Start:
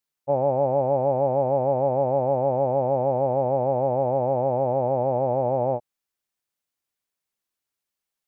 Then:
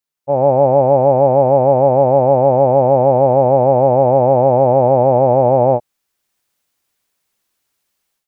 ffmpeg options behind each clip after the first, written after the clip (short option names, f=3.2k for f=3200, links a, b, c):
-af "dynaudnorm=f=220:g=3:m=14.5dB"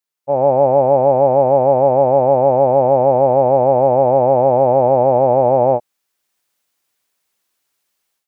-af "lowshelf=f=190:g=-8"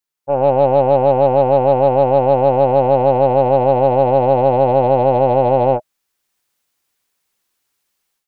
-af "lowshelf=f=110:g=6.5,aeval=exprs='0.75*(cos(1*acos(clip(val(0)/0.75,-1,1)))-cos(1*PI/2))+0.0211*(cos(6*acos(clip(val(0)/0.75,-1,1)))-cos(6*PI/2))':c=same,bandreject=f=630:w=12"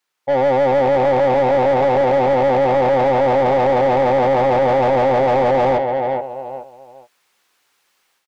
-filter_complex "[0:a]aecho=1:1:425|850|1275:0.224|0.0493|0.0108,asoftclip=type=tanh:threshold=-13.5dB,asplit=2[a][b];[b]highpass=f=720:p=1,volume=18dB,asoftclip=type=tanh:threshold=-13.5dB[c];[a][c]amix=inputs=2:normalize=0,lowpass=f=2.4k:p=1,volume=-6dB,volume=2.5dB"